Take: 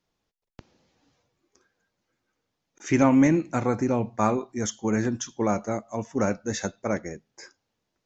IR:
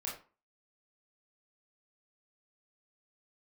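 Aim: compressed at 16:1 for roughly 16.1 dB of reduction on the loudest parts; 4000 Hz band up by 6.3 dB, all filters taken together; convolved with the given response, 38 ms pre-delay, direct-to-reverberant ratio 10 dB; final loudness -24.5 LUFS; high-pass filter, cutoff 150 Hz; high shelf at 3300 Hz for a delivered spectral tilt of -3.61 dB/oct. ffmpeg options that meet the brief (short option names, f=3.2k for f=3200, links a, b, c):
-filter_complex "[0:a]highpass=150,highshelf=f=3.3k:g=6,equalizer=f=4k:t=o:g=3.5,acompressor=threshold=-31dB:ratio=16,asplit=2[a][b];[1:a]atrim=start_sample=2205,adelay=38[c];[b][c]afir=irnorm=-1:irlink=0,volume=-11dB[d];[a][d]amix=inputs=2:normalize=0,volume=12dB"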